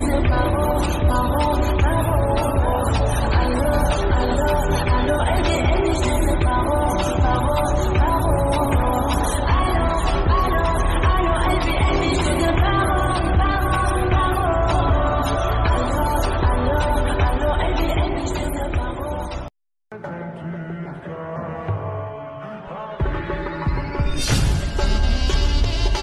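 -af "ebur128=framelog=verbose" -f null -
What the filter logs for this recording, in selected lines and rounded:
Integrated loudness:
  I:         -20.4 LUFS
  Threshold: -30.7 LUFS
Loudness range:
  LRA:         9.4 LU
  Threshold: -40.8 LUFS
  LRA low:   -28.7 LUFS
  LRA high:  -19.3 LUFS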